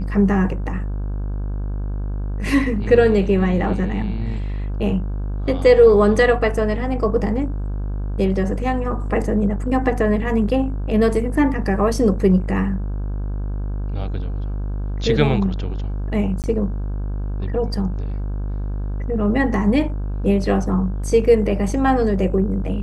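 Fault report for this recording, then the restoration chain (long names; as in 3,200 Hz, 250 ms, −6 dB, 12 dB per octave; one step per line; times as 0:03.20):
mains buzz 50 Hz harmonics 33 −24 dBFS
0:16.42–0:16.44: drop-out 18 ms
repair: hum removal 50 Hz, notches 33
repair the gap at 0:16.42, 18 ms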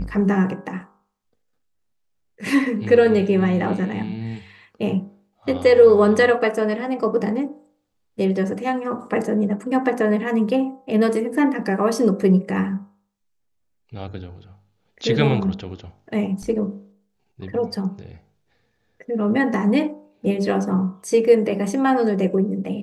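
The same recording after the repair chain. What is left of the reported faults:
none of them is left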